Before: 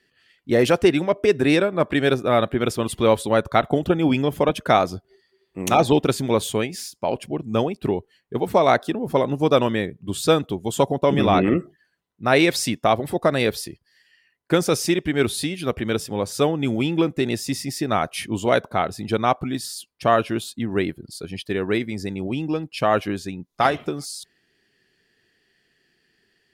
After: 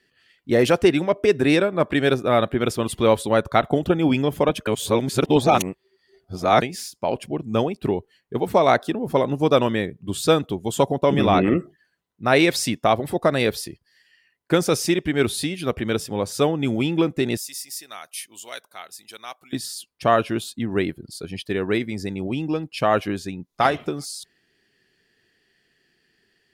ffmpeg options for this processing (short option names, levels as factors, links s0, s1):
-filter_complex "[0:a]asettb=1/sr,asplit=3[s0][s1][s2];[s0]atrim=end=17.374[s3];[s1]atrim=start=17.37:end=19.53,asetpts=PTS-STARTPTS,afade=t=in:d=0.004:c=qsin,afade=t=out:st=2.156:d=0.004:c=qsin,aderivative[s4];[s2]atrim=start=19.526[s5];[s3][s4]acrossfade=d=0.004:c1=hsin:c2=qsin[s6];[s6][s5]acrossfade=d=0.004:c1=qsin:c2=hsin,asplit=3[s7][s8][s9];[s7]atrim=end=4.672[s10];[s8]atrim=start=4.668:end=6.622,asetpts=PTS-STARTPTS,areverse[s11];[s9]atrim=start=6.618[s12];[s10][s11]acrossfade=d=0.004:c1=hsin:c2=hsin[s13];[s13][s12]acrossfade=d=0.004:c1=hsin:c2=hsin"